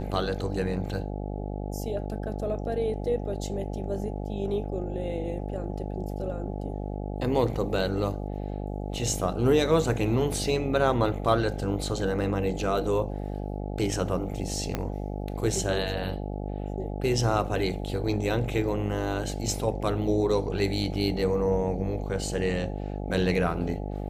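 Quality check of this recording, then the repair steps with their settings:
buzz 50 Hz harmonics 17 -33 dBFS
14.75 pop -13 dBFS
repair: de-click; de-hum 50 Hz, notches 17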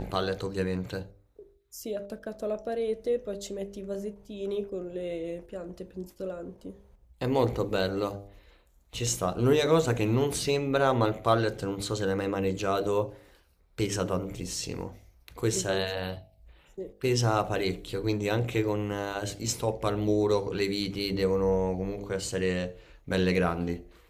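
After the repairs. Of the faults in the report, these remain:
14.75 pop

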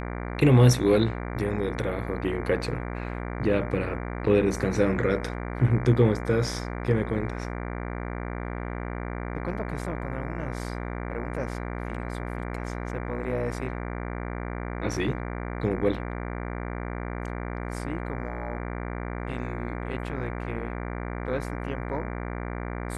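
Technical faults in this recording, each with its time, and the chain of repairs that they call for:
buzz 60 Hz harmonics 39 -33 dBFS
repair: de-hum 60 Hz, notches 39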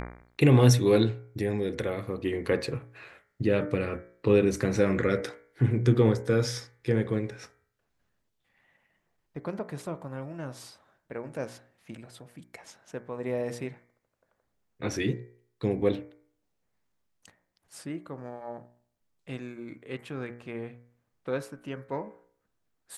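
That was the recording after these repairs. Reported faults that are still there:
none

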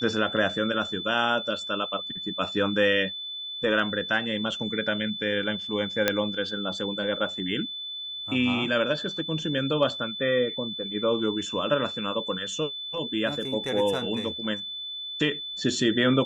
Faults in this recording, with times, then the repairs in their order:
tone 3500 Hz -33 dBFS
6.08 pop -6 dBFS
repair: de-click; notch 3500 Hz, Q 30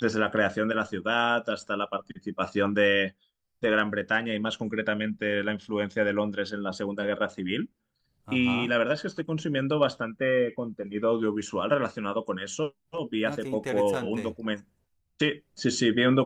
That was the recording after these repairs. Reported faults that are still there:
none

